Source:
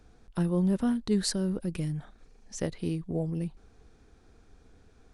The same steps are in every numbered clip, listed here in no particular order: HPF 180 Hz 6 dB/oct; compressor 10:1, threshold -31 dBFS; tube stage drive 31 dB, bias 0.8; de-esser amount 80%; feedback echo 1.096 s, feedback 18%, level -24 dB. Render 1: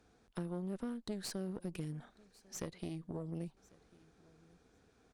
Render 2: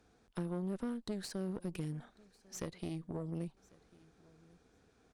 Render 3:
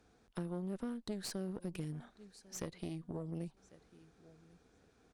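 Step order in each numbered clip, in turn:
compressor > HPF > tube stage > feedback echo > de-esser; HPF > compressor > de-esser > tube stage > feedback echo; feedback echo > compressor > HPF > tube stage > de-esser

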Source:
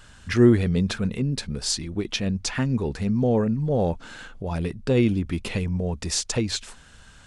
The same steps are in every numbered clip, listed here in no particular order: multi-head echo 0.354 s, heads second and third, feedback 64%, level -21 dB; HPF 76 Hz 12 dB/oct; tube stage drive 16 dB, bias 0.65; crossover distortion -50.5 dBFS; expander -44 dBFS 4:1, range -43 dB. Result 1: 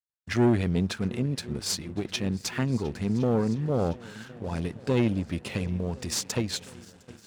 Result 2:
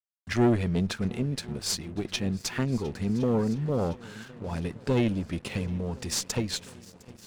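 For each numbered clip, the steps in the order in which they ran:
multi-head echo > tube stage > crossover distortion > expander > HPF; HPF > expander > tube stage > multi-head echo > crossover distortion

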